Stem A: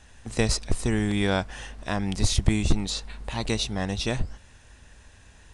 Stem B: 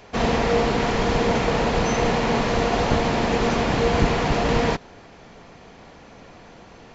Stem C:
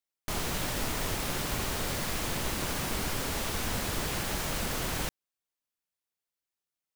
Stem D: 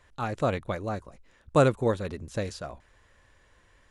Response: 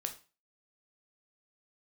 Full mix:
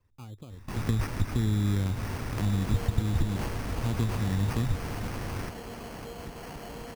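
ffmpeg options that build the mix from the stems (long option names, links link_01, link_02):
-filter_complex "[0:a]adelay=500,volume=-2dB[link_01];[1:a]acompressor=threshold=-28dB:ratio=5,adelay=2250,volume=-10.5dB[link_02];[2:a]adelay=400,volume=-3.5dB[link_03];[3:a]equalizer=frequency=2500:width_type=o:width=1.1:gain=-12.5,acompressor=threshold=-33dB:ratio=12,volume=-10.5dB[link_04];[link_01][link_03][link_04]amix=inputs=3:normalize=0,equalizer=frequency=100:width_type=o:width=0.67:gain=11,equalizer=frequency=250:width_type=o:width=0.67:gain=4,equalizer=frequency=630:width_type=o:width=0.67:gain=-9,equalizer=frequency=1600:width_type=o:width=0.67:gain=-5,equalizer=frequency=6300:width_type=o:width=0.67:gain=-10,acompressor=threshold=-22dB:ratio=5,volume=0dB[link_05];[link_02][link_05]amix=inputs=2:normalize=0,acrossover=split=290|3000[link_06][link_07][link_08];[link_07]acompressor=threshold=-38dB:ratio=6[link_09];[link_06][link_09][link_08]amix=inputs=3:normalize=0,acrusher=samples=12:mix=1:aa=0.000001"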